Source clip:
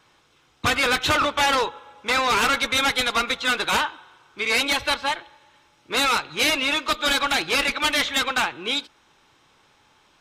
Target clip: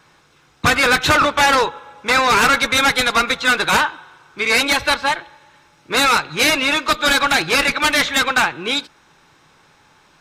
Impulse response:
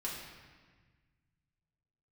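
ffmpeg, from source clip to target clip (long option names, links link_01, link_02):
-af "equalizer=frequency=160:width_type=o:width=0.33:gain=7,equalizer=frequency=1600:width_type=o:width=0.33:gain=3,equalizer=frequency=3150:width_type=o:width=0.33:gain=-5,volume=6dB"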